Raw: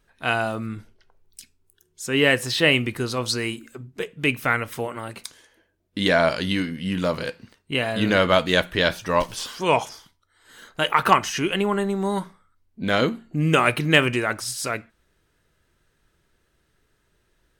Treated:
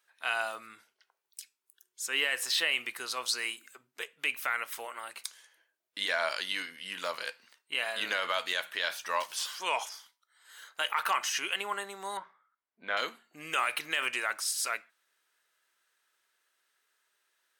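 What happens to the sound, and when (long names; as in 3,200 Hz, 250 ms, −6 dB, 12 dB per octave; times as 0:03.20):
0:12.17–0:12.97: low-pass filter 2,000 Hz
whole clip: high-pass filter 970 Hz 12 dB per octave; high-shelf EQ 8,500 Hz +4.5 dB; brickwall limiter −13.5 dBFS; level −4 dB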